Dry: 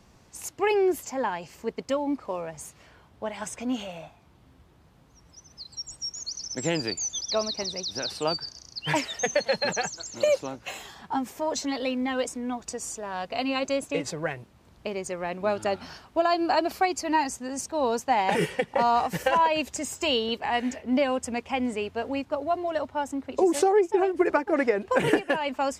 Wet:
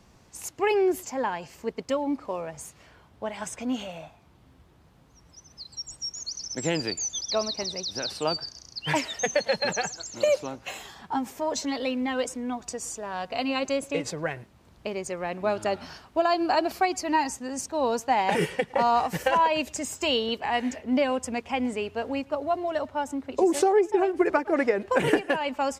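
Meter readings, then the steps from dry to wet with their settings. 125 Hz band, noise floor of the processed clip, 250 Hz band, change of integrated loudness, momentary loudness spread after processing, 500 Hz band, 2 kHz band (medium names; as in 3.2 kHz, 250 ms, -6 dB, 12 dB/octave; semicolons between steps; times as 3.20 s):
0.0 dB, -57 dBFS, 0.0 dB, 0.0 dB, 12 LU, 0.0 dB, 0.0 dB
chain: speakerphone echo 110 ms, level -25 dB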